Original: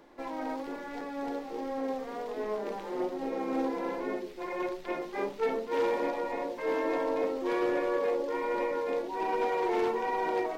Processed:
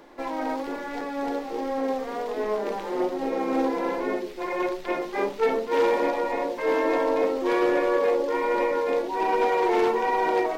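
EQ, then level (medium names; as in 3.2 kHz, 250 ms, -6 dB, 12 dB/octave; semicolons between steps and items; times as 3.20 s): peaking EQ 91 Hz -4 dB 2.8 oct; +7.5 dB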